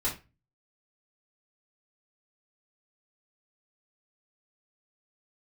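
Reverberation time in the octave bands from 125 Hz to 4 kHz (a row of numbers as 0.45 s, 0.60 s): 0.55 s, 0.40 s, 0.30 s, 0.25 s, 0.30 s, 0.25 s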